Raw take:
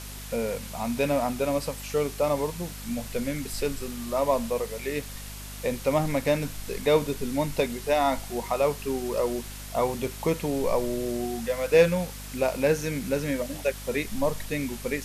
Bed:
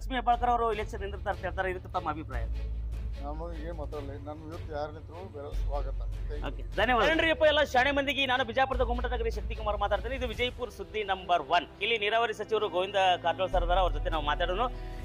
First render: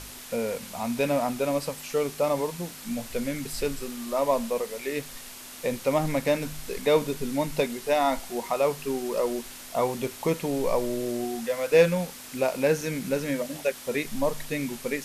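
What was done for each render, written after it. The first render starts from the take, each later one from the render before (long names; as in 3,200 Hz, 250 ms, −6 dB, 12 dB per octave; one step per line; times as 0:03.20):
hum removal 50 Hz, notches 4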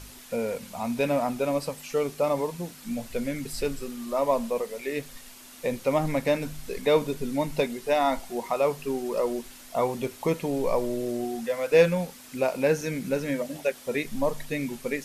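broadband denoise 6 dB, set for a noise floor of −43 dBFS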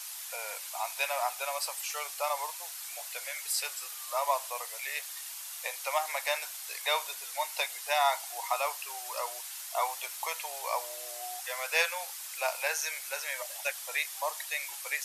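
Butterworth high-pass 720 Hz 36 dB per octave
high-shelf EQ 4,300 Hz +9 dB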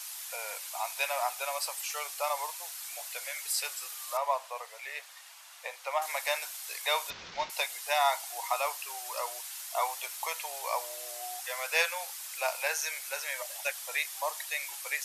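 0:04.17–0:06.02: low-pass filter 2,100 Hz 6 dB per octave
0:07.10–0:07.50: variable-slope delta modulation 32 kbit/s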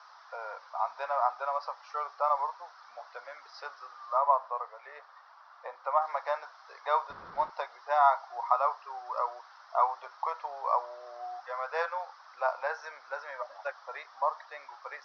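Butterworth low-pass 5,600 Hz 96 dB per octave
high shelf with overshoot 1,800 Hz −13 dB, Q 3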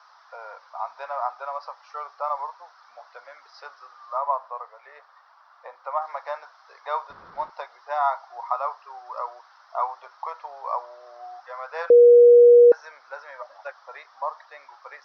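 0:11.90–0:12.72: beep over 480 Hz −8 dBFS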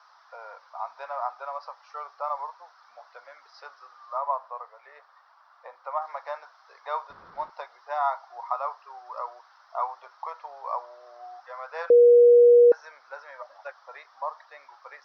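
level −3 dB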